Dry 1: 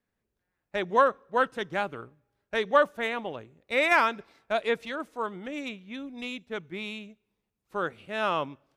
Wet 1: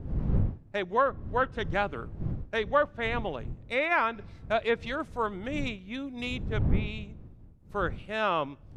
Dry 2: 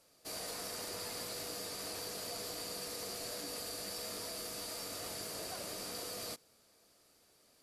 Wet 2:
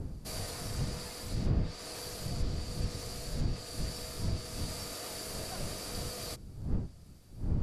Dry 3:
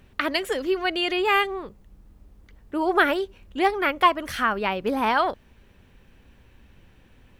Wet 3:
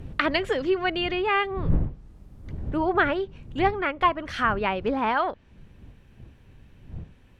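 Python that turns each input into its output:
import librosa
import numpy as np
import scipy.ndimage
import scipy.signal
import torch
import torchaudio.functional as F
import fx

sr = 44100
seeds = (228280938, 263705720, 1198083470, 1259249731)

y = fx.dmg_wind(x, sr, seeds[0], corner_hz=120.0, level_db=-35.0)
y = fx.env_lowpass_down(y, sr, base_hz=2900.0, full_db=-20.5)
y = fx.rider(y, sr, range_db=3, speed_s=0.5)
y = F.gain(torch.from_numpy(y), -1.0).numpy()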